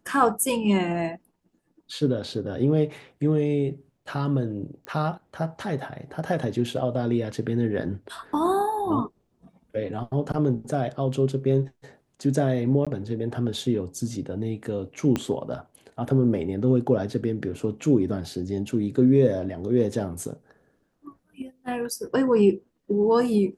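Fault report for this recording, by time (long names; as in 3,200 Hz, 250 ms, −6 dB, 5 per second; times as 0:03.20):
0:04.85: click −22 dBFS
0:12.85–0:12.87: drop-out 16 ms
0:15.16: click −12 dBFS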